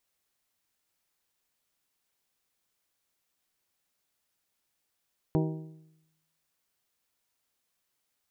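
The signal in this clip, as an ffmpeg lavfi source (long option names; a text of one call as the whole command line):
ffmpeg -f lavfi -i "aevalsrc='0.0708*pow(10,-3*t/0.91)*sin(2*PI*158*t)+0.0501*pow(10,-3*t/0.739)*sin(2*PI*316*t)+0.0355*pow(10,-3*t/0.7)*sin(2*PI*379.2*t)+0.0251*pow(10,-3*t/0.654)*sin(2*PI*474*t)+0.0178*pow(10,-3*t/0.6)*sin(2*PI*632*t)+0.0126*pow(10,-3*t/0.562)*sin(2*PI*790*t)+0.00891*pow(10,-3*t/0.532)*sin(2*PI*948*t)':duration=1.55:sample_rate=44100" out.wav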